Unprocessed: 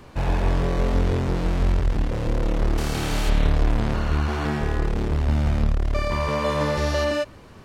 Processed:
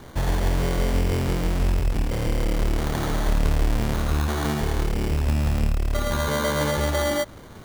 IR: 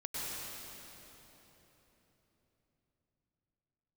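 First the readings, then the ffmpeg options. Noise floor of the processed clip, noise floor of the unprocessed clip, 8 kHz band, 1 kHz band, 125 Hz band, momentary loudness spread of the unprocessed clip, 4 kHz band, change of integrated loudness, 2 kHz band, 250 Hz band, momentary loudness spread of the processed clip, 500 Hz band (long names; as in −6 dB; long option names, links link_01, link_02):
−42 dBFS, −45 dBFS, +5.5 dB, −1.0 dB, −1.0 dB, 3 LU, +1.5 dB, −0.5 dB, 0.0 dB, −0.5 dB, 3 LU, −1.0 dB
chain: -filter_complex "[0:a]asplit=2[link_01][link_02];[link_02]acompressor=threshold=-27dB:ratio=6,volume=1.5dB[link_03];[link_01][link_03]amix=inputs=2:normalize=0,acrusher=samples=17:mix=1:aa=0.000001,volume=-4dB"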